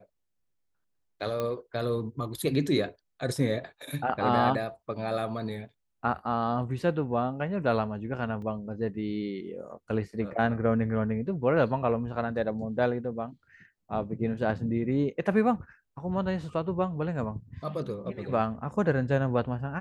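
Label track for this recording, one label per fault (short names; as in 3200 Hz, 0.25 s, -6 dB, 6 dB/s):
1.400000	1.400000	pop -18 dBFS
8.420000	8.420000	gap 2.2 ms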